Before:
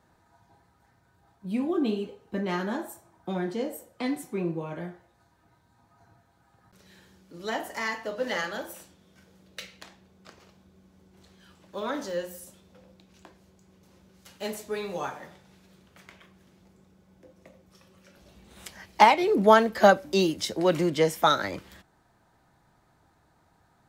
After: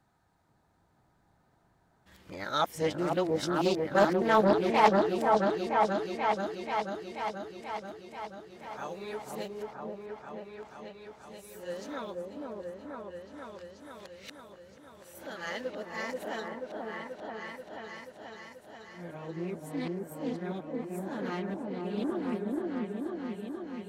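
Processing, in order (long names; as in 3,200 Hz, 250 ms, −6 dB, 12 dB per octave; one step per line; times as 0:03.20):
played backwards from end to start
echo whose low-pass opens from repeat to repeat 484 ms, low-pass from 750 Hz, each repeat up 1 octave, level 0 dB
highs frequency-modulated by the lows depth 0.3 ms
level −7 dB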